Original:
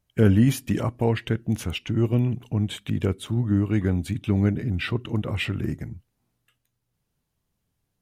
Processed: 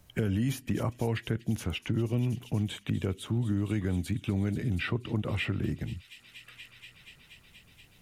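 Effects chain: peak limiter -15.5 dBFS, peak gain reduction 9 dB; on a send: feedback echo behind a high-pass 239 ms, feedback 76%, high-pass 3.7 kHz, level -14.5 dB; on the sum: three bands compressed up and down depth 70%; trim -5 dB

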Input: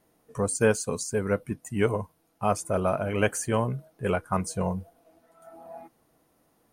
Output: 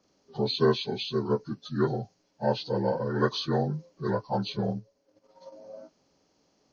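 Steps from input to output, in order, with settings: frequency axis rescaled in octaves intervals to 79%; 4.57–5.57 s: transient shaper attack +6 dB, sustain -9 dB

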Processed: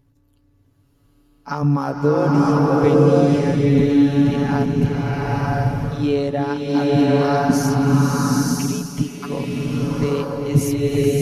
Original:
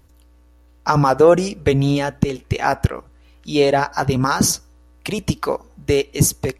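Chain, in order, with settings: granular stretch 1.7×, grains 34 ms; graphic EQ 125/250/8000 Hz +6/+10/-4 dB; swelling reverb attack 980 ms, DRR -5.5 dB; trim -9.5 dB

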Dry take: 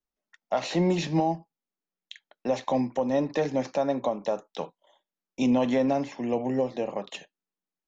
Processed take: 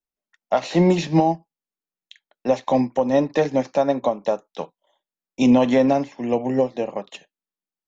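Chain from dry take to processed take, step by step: upward expansion 1.5:1, over -45 dBFS; trim +8.5 dB

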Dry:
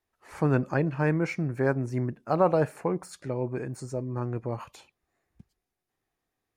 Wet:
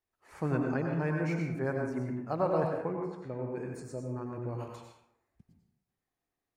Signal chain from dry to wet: 2.67–3.47 s: low-pass 2.5 kHz 12 dB/octave; plate-style reverb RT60 0.81 s, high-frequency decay 0.55×, pre-delay 80 ms, DRR 1 dB; trim -8 dB

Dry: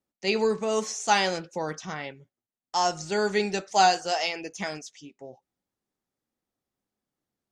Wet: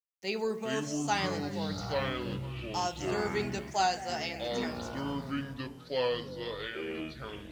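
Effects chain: repeats whose band climbs or falls 108 ms, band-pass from 200 Hz, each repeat 1.4 oct, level -8 dB; bit crusher 9-bit; ever faster or slower copies 291 ms, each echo -7 st, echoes 3; trim -8.5 dB

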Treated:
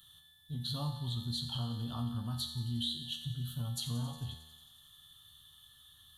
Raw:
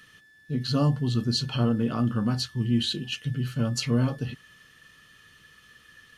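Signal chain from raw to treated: FFT filter 110 Hz 0 dB, 180 Hz -13 dB, 470 Hz -21 dB, 860 Hz -2 dB, 1.6 kHz -15 dB, 2.4 kHz -27 dB, 3.5 kHz +12 dB, 5 kHz -14 dB, 11 kHz +9 dB; compression, threshold -30 dBFS, peak gain reduction 9.5 dB; peaking EQ 280 Hz +2.5 dB 2.9 oct; feedback comb 79 Hz, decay 1 s, harmonics all, mix 80%; feedback echo behind a high-pass 90 ms, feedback 78%, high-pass 2.2 kHz, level -15 dB; trim +7 dB

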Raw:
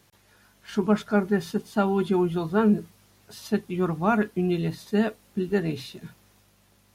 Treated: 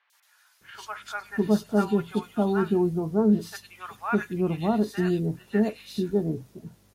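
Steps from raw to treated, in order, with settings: three bands offset in time mids, highs, lows 100/610 ms, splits 930/2800 Hz

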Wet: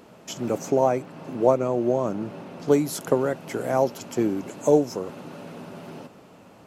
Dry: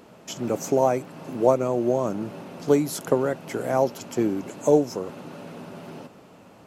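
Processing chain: 0.58–2.72 s: treble shelf 6.6 kHz -8.5 dB

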